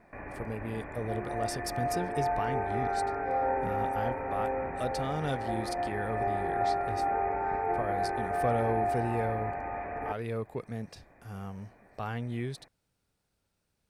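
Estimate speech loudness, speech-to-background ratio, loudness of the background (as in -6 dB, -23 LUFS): -37.0 LUFS, -4.5 dB, -32.5 LUFS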